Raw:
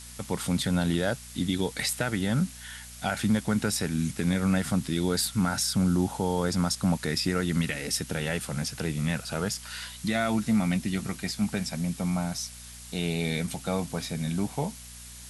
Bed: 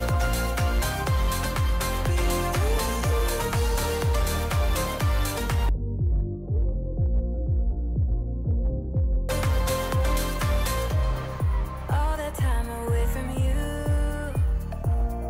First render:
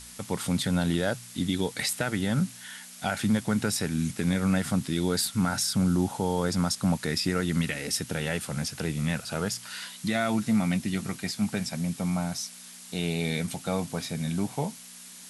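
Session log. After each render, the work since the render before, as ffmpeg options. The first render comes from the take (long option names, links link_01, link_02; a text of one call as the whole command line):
ffmpeg -i in.wav -af "bandreject=frequency=60:width_type=h:width=4,bandreject=frequency=120:width_type=h:width=4" out.wav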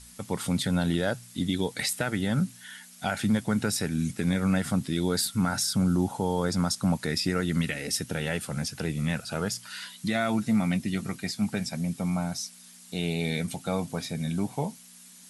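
ffmpeg -i in.wav -af "afftdn=noise_reduction=7:noise_floor=-46" out.wav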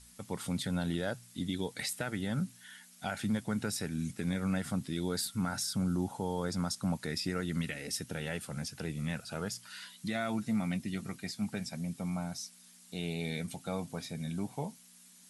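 ffmpeg -i in.wav -af "volume=-7.5dB" out.wav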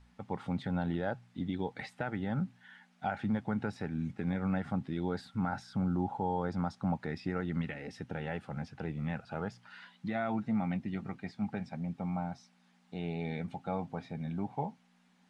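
ffmpeg -i in.wav -af "lowpass=2000,equalizer=frequency=810:width=6.5:gain=10" out.wav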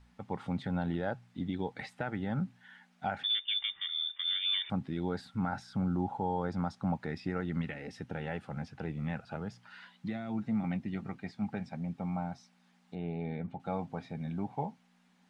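ffmpeg -i in.wav -filter_complex "[0:a]asettb=1/sr,asplit=3[link_01][link_02][link_03];[link_01]atrim=end=3.234[link_04];[link_02]atrim=start=3.23:end=4.7,asetpts=PTS-STARTPTS,afade=type=in:duration=0.004:curve=qsin,afade=type=out:start_time=1.466:duration=0.004:curve=qsin,lowpass=frequency=3100:width_type=q:width=0.5098,lowpass=frequency=3100:width_type=q:width=0.6013,lowpass=frequency=3100:width_type=q:width=0.9,lowpass=frequency=3100:width_type=q:width=2.563,afreqshift=-3700[link_05];[link_03]atrim=start=4.696[link_06];[link_04][link_05]acrossfade=duration=0.004:curve1=hsin:curve2=qsin[link_07];[link_07][link_06]acrossfade=duration=0.004:curve1=qsin:curve2=hsin,asettb=1/sr,asplit=3[link_08][link_09][link_10];[link_08]atrim=end=9.364[link_11];[link_09]atrim=start=9.36:end=10.64,asetpts=PTS-STARTPTS,afade=type=in:duration=0.004:curve=qsin,afade=type=out:start_time=1.276:duration=0.004:curve=qsin,acrossover=split=380|3000[link_12][link_13][link_14];[link_13]acompressor=threshold=-44dB:ratio=6:attack=3.2:release=140:knee=2.83:detection=peak[link_15];[link_12][link_15][link_14]amix=inputs=3:normalize=0[link_16];[link_10]atrim=start=10.636[link_17];[link_11][link_16]acrossfade=duration=0.004:curve1=hsin:curve2=qsin[link_18];[link_18][link_17]acrossfade=duration=0.004:curve1=qsin:curve2=hsin,asettb=1/sr,asplit=3[link_19][link_20][link_21];[link_19]atrim=end=12.954[link_22];[link_20]atrim=start=12.95:end=13.6,asetpts=PTS-STARTPTS,afade=type=in:duration=0.004:curve=qsin,afade=type=out:start_time=0.646:duration=0.004:curve=qsin,lowpass=frequency=1200:poles=1[link_23];[link_21]atrim=start=13.596[link_24];[link_22][link_23]acrossfade=duration=0.004:curve1=hsin:curve2=qsin[link_25];[link_25][link_24]acrossfade=duration=0.004:curve1=qsin:curve2=hsin" out.wav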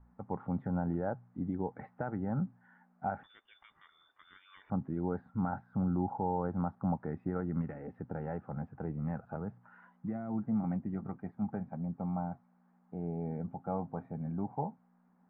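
ffmpeg -i in.wav -af "lowpass=frequency=1300:width=0.5412,lowpass=frequency=1300:width=1.3066" out.wav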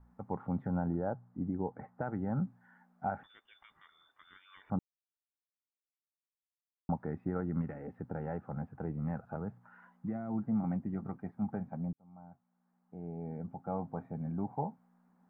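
ffmpeg -i in.wav -filter_complex "[0:a]asettb=1/sr,asplit=3[link_01][link_02][link_03];[link_01]atrim=end=0.884[link_04];[link_02]atrim=start=0.88:end=2.02,asetpts=PTS-STARTPTS,afade=type=in:duration=0.004:curve=qsin,afade=type=out:start_time=1.136:duration=0.004:curve=qsin,lowpass=1500[link_05];[link_03]atrim=start=2.016[link_06];[link_04][link_05]acrossfade=duration=0.004:curve1=hsin:curve2=qsin[link_07];[link_07][link_06]acrossfade=duration=0.004:curve1=qsin:curve2=hsin,asplit=4[link_08][link_09][link_10][link_11];[link_08]atrim=end=4.79,asetpts=PTS-STARTPTS,afade=type=out:start_time=4.786:duration=0.004:curve=hsin[link_12];[link_09]atrim=start=4.79:end=6.89,asetpts=PTS-STARTPTS,volume=0[link_13];[link_10]atrim=start=6.89:end=11.93,asetpts=PTS-STARTPTS,afade=type=in:duration=0.004:curve=hsin,afade=type=out:start_time=5.036:duration=0.004:curve=hsin[link_14];[link_11]atrim=start=11.93,asetpts=PTS-STARTPTS,afade=type=in:duration=2.08[link_15];[link_12][link_13][link_14][link_15]concat=n=4:v=0:a=1" out.wav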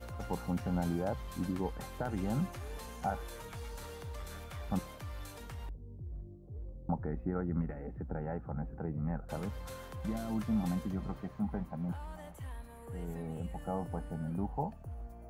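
ffmpeg -i in.wav -i bed.wav -filter_complex "[1:a]volume=-20dB[link_01];[0:a][link_01]amix=inputs=2:normalize=0" out.wav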